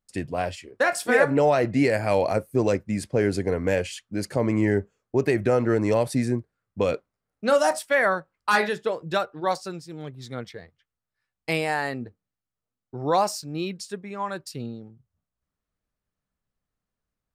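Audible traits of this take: noise floor -88 dBFS; spectral tilt -5.0 dB/octave

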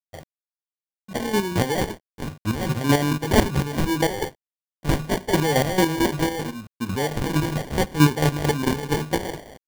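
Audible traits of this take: a quantiser's noise floor 8-bit, dither none; chopped level 4.5 Hz, depth 60%, duty 30%; phasing stages 2, 0.77 Hz, lowest notch 560–1400 Hz; aliases and images of a low sample rate 1.3 kHz, jitter 0%

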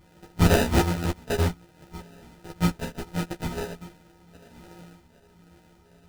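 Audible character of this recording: a buzz of ramps at a fixed pitch in blocks of 256 samples; phasing stages 12, 1.3 Hz, lowest notch 340–1000 Hz; aliases and images of a low sample rate 1.1 kHz, jitter 0%; a shimmering, thickened sound

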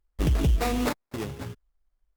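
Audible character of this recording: aliases and images of a low sample rate 3.1 kHz, jitter 20%; Opus

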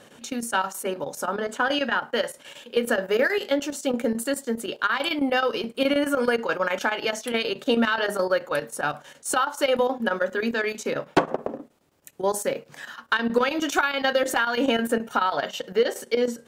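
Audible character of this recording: chopped level 9.4 Hz, depth 65%, duty 80%

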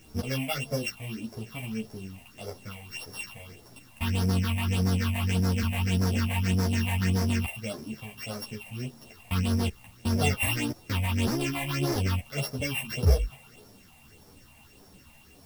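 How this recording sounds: a buzz of ramps at a fixed pitch in blocks of 16 samples; phasing stages 6, 1.7 Hz, lowest notch 360–2800 Hz; a quantiser's noise floor 10-bit, dither triangular; a shimmering, thickened sound

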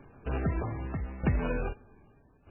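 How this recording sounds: tremolo saw down 0.81 Hz, depth 80%; aliases and images of a low sample rate 2 kHz, jitter 0%; MP3

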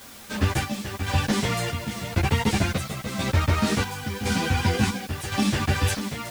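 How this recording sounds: chopped level 0.94 Hz, depth 60%, duty 60%; a quantiser's noise floor 8-bit, dither triangular; a shimmering, thickened sound

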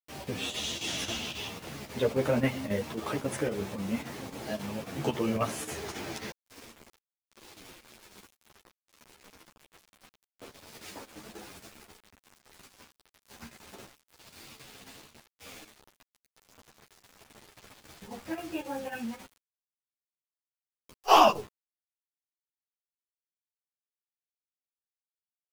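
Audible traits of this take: a quantiser's noise floor 8-bit, dither none; chopped level 3.7 Hz, depth 60%, duty 85%; a shimmering, thickened sound

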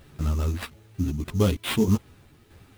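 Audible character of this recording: aliases and images of a low sample rate 6.4 kHz, jitter 20%; tremolo saw down 1.6 Hz, depth 55%; a quantiser's noise floor 12-bit, dither triangular; a shimmering, thickened sound

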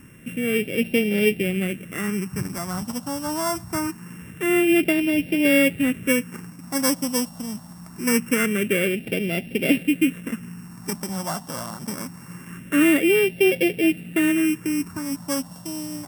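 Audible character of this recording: a buzz of ramps at a fixed pitch in blocks of 16 samples; phasing stages 4, 0.24 Hz, lowest notch 410–1100 Hz; Vorbis

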